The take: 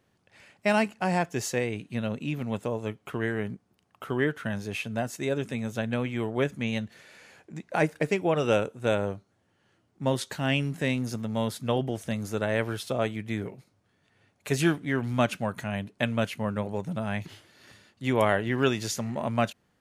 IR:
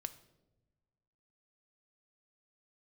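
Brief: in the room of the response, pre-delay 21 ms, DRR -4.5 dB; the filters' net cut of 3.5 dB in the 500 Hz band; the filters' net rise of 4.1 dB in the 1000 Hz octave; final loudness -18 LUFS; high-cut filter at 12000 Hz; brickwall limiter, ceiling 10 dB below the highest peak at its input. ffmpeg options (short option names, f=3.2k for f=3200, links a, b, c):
-filter_complex "[0:a]lowpass=12k,equalizer=f=500:t=o:g=-7,equalizer=f=1k:t=o:g=8,alimiter=limit=-17dB:level=0:latency=1,asplit=2[a][b];[1:a]atrim=start_sample=2205,adelay=21[c];[b][c]afir=irnorm=-1:irlink=0,volume=7dB[d];[a][d]amix=inputs=2:normalize=0,volume=8dB"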